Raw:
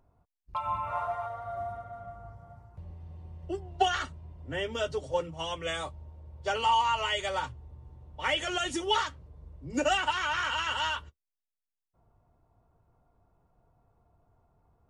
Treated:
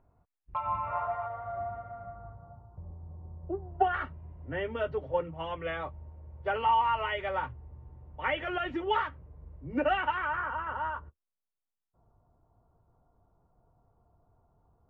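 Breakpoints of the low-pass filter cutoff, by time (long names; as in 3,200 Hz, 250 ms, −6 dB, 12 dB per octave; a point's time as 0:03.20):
low-pass filter 24 dB per octave
0:01.94 2,500 Hz
0:02.58 1,200 Hz
0:03.54 1,200 Hz
0:04.07 2,300 Hz
0:10.06 2,300 Hz
0:10.50 1,400 Hz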